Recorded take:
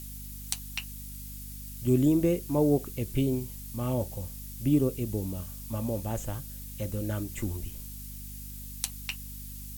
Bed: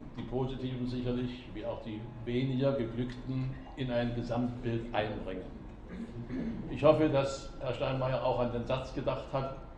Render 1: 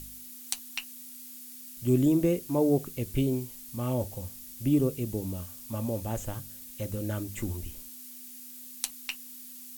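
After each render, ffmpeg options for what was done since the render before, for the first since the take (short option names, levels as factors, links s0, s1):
-af "bandreject=f=50:t=h:w=4,bandreject=f=100:t=h:w=4,bandreject=f=150:t=h:w=4,bandreject=f=200:t=h:w=4"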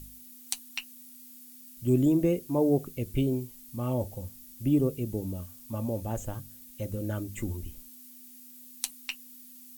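-af "afftdn=nr=7:nf=-46"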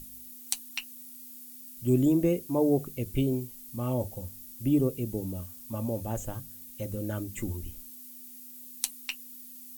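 -af "highshelf=f=7300:g=4,bandreject=f=50:t=h:w=6,bandreject=f=100:t=h:w=6,bandreject=f=150:t=h:w=6"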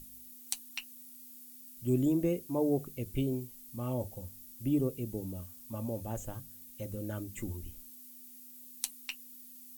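-af "volume=0.562"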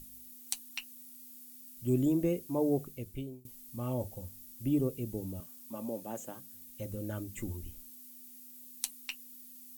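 -filter_complex "[0:a]asettb=1/sr,asplit=3[s0][s1][s2];[s0]atrim=end=5.404[s3];[s1]atrim=start=5.4:end=6.53,asetpts=PTS-STARTPTS,afade=t=in:d=0.004:c=qsin,afade=t=out:st=1.126:d=0.004:c=qsin,highpass=f=180:w=0.5412,highpass=f=180:w=1.3066[s4];[s2]atrim=start=6.526[s5];[s3][s4]acrossfade=d=0.004:c1=hsin:c2=qsin[s6];[s6][s5]acrossfade=d=0.004:c1=qsin:c2=hsin,asplit=2[s7][s8];[s7]atrim=end=3.45,asetpts=PTS-STARTPTS,afade=t=out:st=2.76:d=0.69:silence=0.0630957[s9];[s8]atrim=start=3.45,asetpts=PTS-STARTPTS,afade=t=in:d=0.004:c=hsin:silence=0.0630957[s10];[s9][s10]concat=n=2:v=0:a=1"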